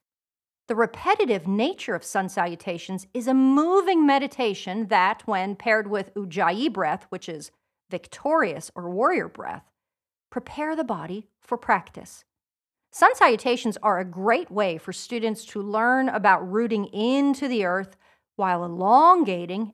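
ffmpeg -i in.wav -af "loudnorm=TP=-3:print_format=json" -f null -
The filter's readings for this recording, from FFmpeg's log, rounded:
"input_i" : "-22.8",
"input_tp" : "-3.0",
"input_lra" : "6.1",
"input_thresh" : "-33.5",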